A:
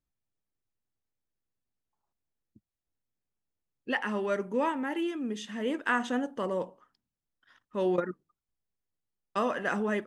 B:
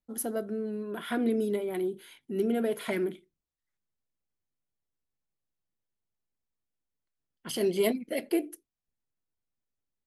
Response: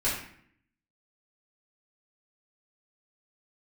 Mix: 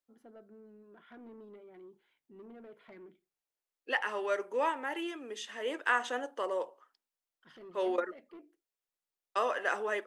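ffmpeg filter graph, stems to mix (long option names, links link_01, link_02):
-filter_complex "[0:a]highpass=frequency=370:width=0.5412,highpass=frequency=370:width=1.3066,volume=0dB[link_01];[1:a]lowpass=2300,asoftclip=type=tanh:threshold=-25.5dB,volume=-18dB[link_02];[link_01][link_02]amix=inputs=2:normalize=0,lowshelf=frequency=420:gain=-4"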